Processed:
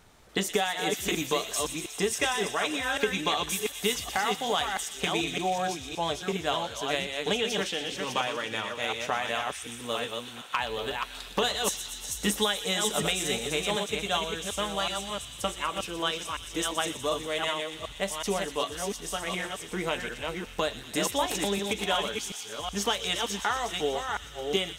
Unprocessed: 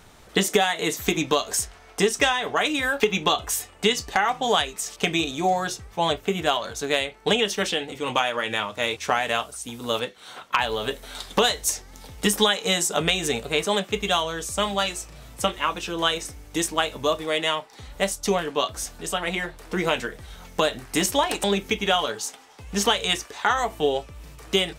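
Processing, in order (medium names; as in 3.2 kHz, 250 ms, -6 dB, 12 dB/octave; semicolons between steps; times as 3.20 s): chunks repeated in reverse 372 ms, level -4 dB; feedback echo behind a high-pass 121 ms, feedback 81%, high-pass 2.8 kHz, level -9 dB; trim -7 dB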